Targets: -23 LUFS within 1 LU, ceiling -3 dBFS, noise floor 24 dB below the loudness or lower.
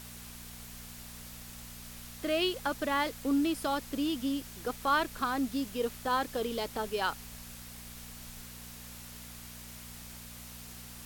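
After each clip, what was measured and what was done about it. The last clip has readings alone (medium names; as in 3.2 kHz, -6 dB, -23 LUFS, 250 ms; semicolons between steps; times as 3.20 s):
hum 60 Hz; highest harmonic 240 Hz; hum level -49 dBFS; noise floor -47 dBFS; noise floor target -56 dBFS; loudness -32.0 LUFS; peak level -16.0 dBFS; loudness target -23.0 LUFS
-> de-hum 60 Hz, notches 4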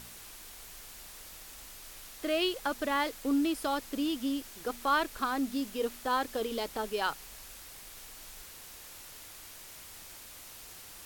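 hum not found; noise floor -49 dBFS; noise floor target -56 dBFS
-> noise reduction 7 dB, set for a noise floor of -49 dBFS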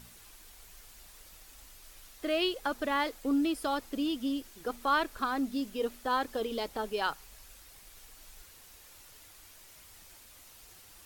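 noise floor -55 dBFS; noise floor target -57 dBFS
-> noise reduction 6 dB, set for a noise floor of -55 dBFS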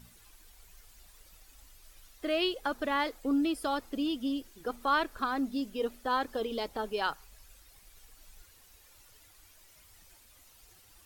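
noise floor -59 dBFS; loudness -32.5 LUFS; peak level -16.0 dBFS; loudness target -23.0 LUFS
-> trim +9.5 dB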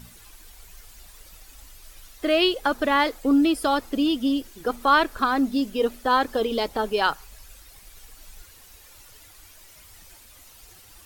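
loudness -23.0 LUFS; peak level -6.5 dBFS; noise floor -50 dBFS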